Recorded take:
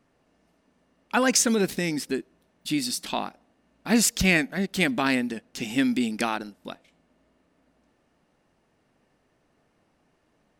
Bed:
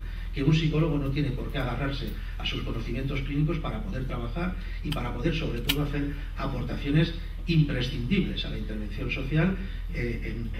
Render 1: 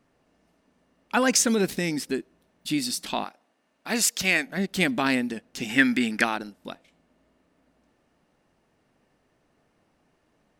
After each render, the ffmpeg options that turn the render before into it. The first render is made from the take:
-filter_complex "[0:a]asettb=1/sr,asplit=3[a][b][c];[a]atrim=end=3.244[d];[b]atrim=start=3.24:end=4.47,asetpts=PTS-STARTPTS,afade=t=in:d=0.004:c=qsin,afade=t=out:st=1.226:d=0.004:c=qsin,highpass=f=600:p=1[e];[c]atrim=start=4.466[f];[d][e]acrossfade=d=0.004:c1=hsin:c2=qsin[g];[g][f]acrossfade=d=0.004:c1=qsin:c2=hsin,asettb=1/sr,asplit=3[h][i][j];[h]atrim=end=5.694[k];[i]atrim=start=5.69:end=6.24,asetpts=PTS-STARTPTS,afade=t=in:d=0.004:c=qsin,afade=t=out:st=0.546:d=0.004:c=qsin,equalizer=f=1.7k:t=o:w=0.94:g=13.5[l];[j]atrim=start=6.236[m];[k][l]acrossfade=d=0.004:c1=hsin:c2=qsin[n];[n][m]acrossfade=d=0.004:c1=qsin:c2=hsin"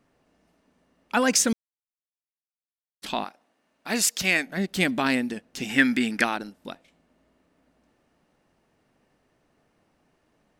-filter_complex "[0:a]asplit=3[a][b][c];[a]atrim=end=1.53,asetpts=PTS-STARTPTS,afade=t=out:st=1.526:d=0.004:c=hsin[d];[b]atrim=start=1.53:end=3.02,asetpts=PTS-STARTPTS,volume=0[e];[c]atrim=start=3.02,asetpts=PTS-STARTPTS,afade=t=in:d=0.004:c=hsin[f];[d][e][f]concat=n=3:v=0:a=1"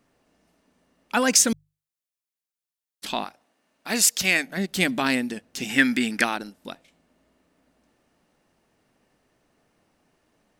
-af "highshelf=f=3.9k:g=5.5,bandreject=f=50:t=h:w=6,bandreject=f=100:t=h:w=6,bandreject=f=150:t=h:w=6"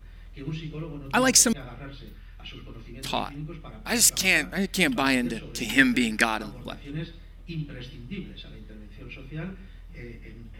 -filter_complex "[1:a]volume=-11dB[a];[0:a][a]amix=inputs=2:normalize=0"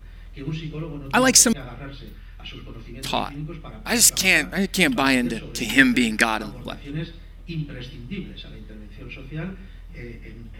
-af "volume=4dB,alimiter=limit=-1dB:level=0:latency=1"

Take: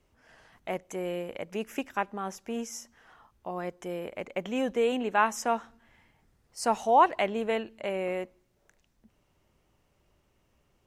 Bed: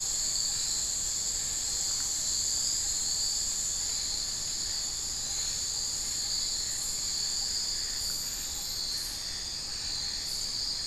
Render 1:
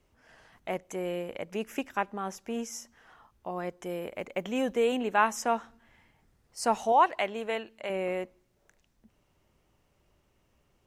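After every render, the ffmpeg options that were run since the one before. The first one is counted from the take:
-filter_complex "[0:a]asettb=1/sr,asplit=3[a][b][c];[a]atrim=end=3.854[d];[b]atrim=start=3.85:end=5.32,asetpts=PTS-STARTPTS,afade=t=in:d=0.004:c=qsin,afade=t=out:st=1.466:d=0.004:c=qsin,highshelf=f=11k:g=8[e];[c]atrim=start=5.316[f];[d][e]acrossfade=d=0.004:c1=hsin:c2=qsin[g];[g][f]acrossfade=d=0.004:c1=qsin:c2=hsin,asettb=1/sr,asplit=3[h][i][j];[h]atrim=end=6.924[k];[i]atrim=start=6.92:end=7.9,asetpts=PTS-STARTPTS,afade=t=in:d=0.004:c=qsin,afade=t=out:st=0.976:d=0.004:c=qsin,lowshelf=f=410:g=-9[l];[j]atrim=start=7.896[m];[k][l]acrossfade=d=0.004:c1=hsin:c2=qsin[n];[n][m]acrossfade=d=0.004:c1=qsin:c2=hsin"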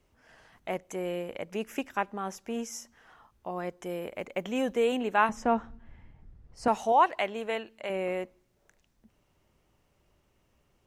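-filter_complex "[0:a]asettb=1/sr,asplit=3[a][b][c];[a]atrim=end=5.294[d];[b]atrim=start=5.29:end=6.68,asetpts=PTS-STARTPTS,afade=t=in:d=0.004:c=qsin,afade=t=out:st=1.386:d=0.004:c=qsin,aemphasis=mode=reproduction:type=riaa[e];[c]atrim=start=6.676[f];[d][e]acrossfade=d=0.004:c1=hsin:c2=qsin[g];[g][f]acrossfade=d=0.004:c1=qsin:c2=hsin"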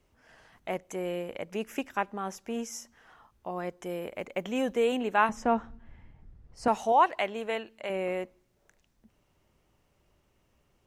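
-af anull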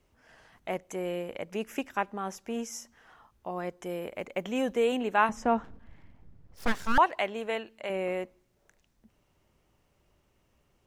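-filter_complex "[0:a]asettb=1/sr,asplit=3[a][b][c];[a]atrim=end=5.644[d];[b]atrim=start=5.64:end=6.98,asetpts=PTS-STARTPTS,afade=t=in:d=0.004:c=qsin,afade=t=out:st=1.336:d=0.004:c=qsin,aeval=exprs='abs(val(0))':c=same[e];[c]atrim=start=6.976[f];[d][e]acrossfade=d=0.004:c1=hsin:c2=qsin[g];[g][f]acrossfade=d=0.004:c1=qsin:c2=hsin"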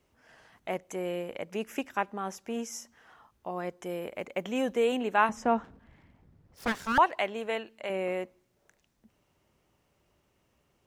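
-af "highpass=f=83:p=1"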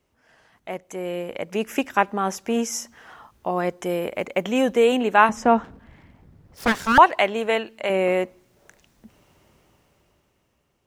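-af "dynaudnorm=f=220:g=13:m=15dB"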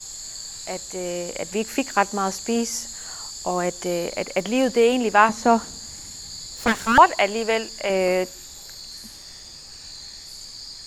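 -filter_complex "[1:a]volume=-5.5dB[a];[0:a][a]amix=inputs=2:normalize=0"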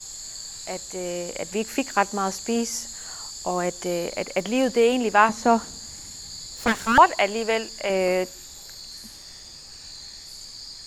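-af "volume=-1.5dB"

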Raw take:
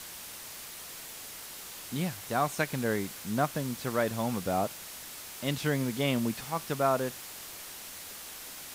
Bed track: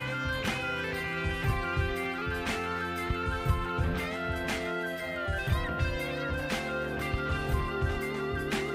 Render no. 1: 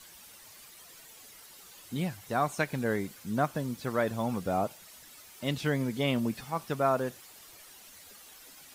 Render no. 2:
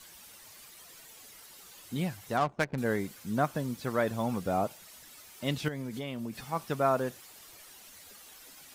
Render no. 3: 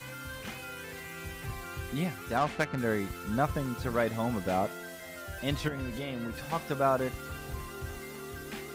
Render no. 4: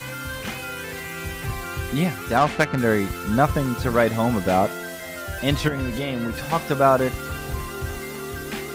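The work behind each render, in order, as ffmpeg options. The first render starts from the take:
-af "afftdn=nr=11:nf=-44"
-filter_complex "[0:a]asettb=1/sr,asplit=3[a][b][c];[a]atrim=end=2.374[d];[b]atrim=start=2.37:end=2.78,asetpts=PTS-STARTPTS,afade=t=in:d=0.004:c=qsin,afade=t=out:st=0.406:d=0.004:c=qsin,adynamicsmooth=sensitivity=5.5:basefreq=520[e];[c]atrim=start=2.776[f];[d][e]acrossfade=d=0.004:c1=hsin:c2=qsin[g];[g][f]acrossfade=d=0.004:c1=qsin:c2=hsin,asettb=1/sr,asplit=3[h][i][j];[h]atrim=end=5.684[k];[i]atrim=start=5.68:end=6.5,asetpts=PTS-STARTPTS,afade=t=in:d=0.004:c=qsin,afade=t=out:st=0.816:d=0.004:c=qsin,acompressor=threshold=-33dB:ratio=6:attack=3.2:release=140:knee=1:detection=peak[l];[j]atrim=start=6.496[m];[k][l]acrossfade=d=0.004:c1=hsin:c2=qsin[n];[n][m]acrossfade=d=0.004:c1=qsin:c2=hsin"
-filter_complex "[1:a]volume=-10dB[a];[0:a][a]amix=inputs=2:normalize=0"
-af "volume=10dB"

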